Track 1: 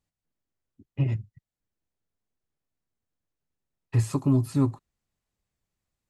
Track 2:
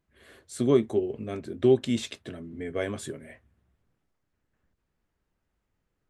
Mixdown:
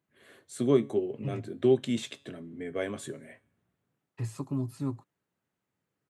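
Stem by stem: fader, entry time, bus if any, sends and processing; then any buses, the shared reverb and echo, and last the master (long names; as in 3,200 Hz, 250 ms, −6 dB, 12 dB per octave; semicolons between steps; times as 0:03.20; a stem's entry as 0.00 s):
−9.5 dB, 0.25 s, no send, no processing
+1.5 dB, 0.00 s, no send, parametric band 5,100 Hz −4.5 dB 0.37 octaves; tuned comb filter 140 Hz, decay 0.54 s, harmonics all, mix 40%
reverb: not used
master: high-pass filter 110 Hz 24 dB per octave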